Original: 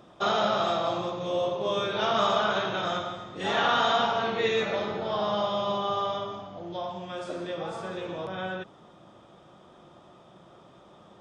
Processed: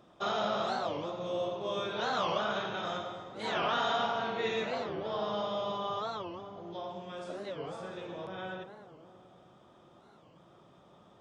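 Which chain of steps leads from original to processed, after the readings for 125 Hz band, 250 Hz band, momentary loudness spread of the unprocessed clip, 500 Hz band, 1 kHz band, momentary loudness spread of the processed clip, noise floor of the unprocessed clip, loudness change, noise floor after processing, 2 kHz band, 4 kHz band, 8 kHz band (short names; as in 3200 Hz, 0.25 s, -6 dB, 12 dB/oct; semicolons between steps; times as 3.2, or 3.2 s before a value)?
-6.5 dB, -6.0 dB, 12 LU, -6.5 dB, -6.5 dB, 11 LU, -54 dBFS, -6.5 dB, -60 dBFS, -6.5 dB, -7.0 dB, -6.5 dB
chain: darkening echo 0.105 s, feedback 81%, low-pass 2200 Hz, level -11 dB; record warp 45 rpm, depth 250 cents; gain -7 dB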